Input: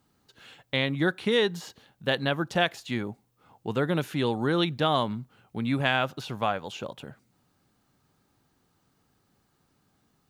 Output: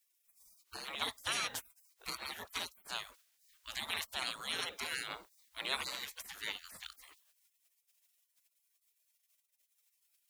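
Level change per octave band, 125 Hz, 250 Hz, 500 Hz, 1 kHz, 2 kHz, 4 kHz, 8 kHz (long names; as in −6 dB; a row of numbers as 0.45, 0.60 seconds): −30.0, −28.0, −24.0, −14.0, −10.5, −6.5, +4.5 decibels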